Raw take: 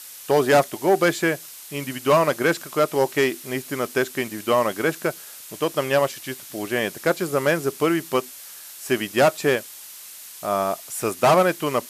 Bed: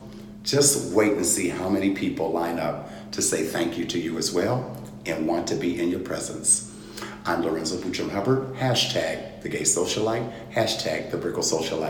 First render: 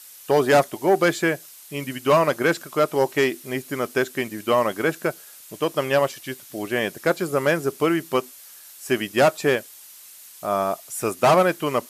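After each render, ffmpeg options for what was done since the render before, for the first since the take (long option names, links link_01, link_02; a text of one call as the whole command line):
ffmpeg -i in.wav -af "afftdn=noise_reduction=6:noise_floor=-41" out.wav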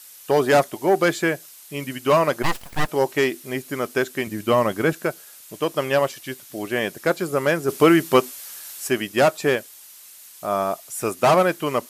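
ffmpeg -i in.wav -filter_complex "[0:a]asplit=3[link_01][link_02][link_03];[link_01]afade=type=out:start_time=2.42:duration=0.02[link_04];[link_02]aeval=exprs='abs(val(0))':channel_layout=same,afade=type=in:start_time=2.42:duration=0.02,afade=type=out:start_time=2.87:duration=0.02[link_05];[link_03]afade=type=in:start_time=2.87:duration=0.02[link_06];[link_04][link_05][link_06]amix=inputs=3:normalize=0,asettb=1/sr,asplit=3[link_07][link_08][link_09];[link_07]atrim=end=4.274[link_10];[link_08]atrim=start=4.27:end=4.93,asetpts=PTS-STARTPTS,afade=type=in:duration=0.004:curve=qsin,afade=type=out:start_time=0.656:duration=0.004:curve=qsin,lowshelf=frequency=180:gain=11[link_11];[link_09]atrim=start=4.926[link_12];[link_10][link_11]acrossfade=duration=0.004:curve1=hsin:curve2=qsin[link_13];[link_13][link_12]acrossfade=duration=0.004:curve1=qsin:curve2=hsin,asplit=3[link_14][link_15][link_16];[link_14]afade=type=out:start_time=7.68:duration=0.02[link_17];[link_15]acontrast=81,afade=type=in:start_time=7.68:duration=0.02,afade=type=out:start_time=8.87:duration=0.02[link_18];[link_16]afade=type=in:start_time=8.87:duration=0.02[link_19];[link_17][link_18][link_19]amix=inputs=3:normalize=0" out.wav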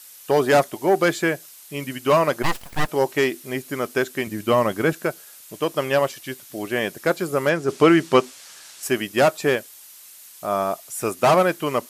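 ffmpeg -i in.wav -filter_complex "[0:a]asettb=1/sr,asplit=3[link_01][link_02][link_03];[link_01]atrim=end=7.494[link_04];[link_02]atrim=start=7.49:end=8.83,asetpts=PTS-STARTPTS,afade=type=in:duration=0.004:curve=qsin,afade=type=out:start_time=1.336:duration=0.004:curve=qsin,lowpass=7100[link_05];[link_03]atrim=start=8.826[link_06];[link_04][link_05]acrossfade=duration=0.004:curve1=hsin:curve2=qsin[link_07];[link_07][link_06]acrossfade=duration=0.004:curve1=qsin:curve2=hsin" out.wav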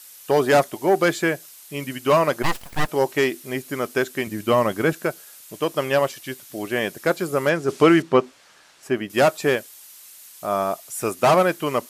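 ffmpeg -i in.wav -filter_complex "[0:a]asettb=1/sr,asplit=3[link_01][link_02][link_03];[link_01]atrim=end=8.024[link_04];[link_02]atrim=start=8.02:end=9.1,asetpts=PTS-STARTPTS,afade=type=in:duration=0.004:curve=qsin,afade=type=out:start_time=1.076:duration=0.004:curve=qsin,lowpass=frequency=1400:poles=1[link_05];[link_03]atrim=start=9.096[link_06];[link_04][link_05]acrossfade=duration=0.004:curve1=hsin:curve2=qsin[link_07];[link_07][link_06]acrossfade=duration=0.004:curve1=qsin:curve2=hsin" out.wav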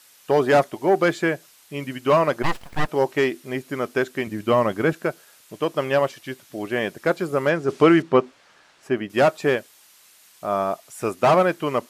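ffmpeg -i in.wav -af "lowpass=frequency=3200:poles=1" out.wav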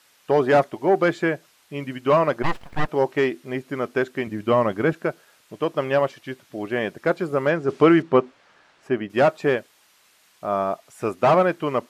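ffmpeg -i in.wav -af "highshelf=frequency=4900:gain=-10.5" out.wav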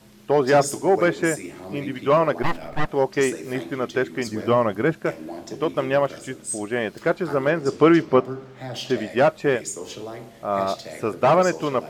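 ffmpeg -i in.wav -i bed.wav -filter_complex "[1:a]volume=-10.5dB[link_01];[0:a][link_01]amix=inputs=2:normalize=0" out.wav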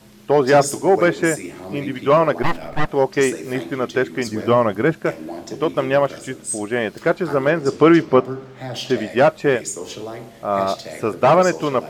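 ffmpeg -i in.wav -af "volume=3.5dB,alimiter=limit=-3dB:level=0:latency=1" out.wav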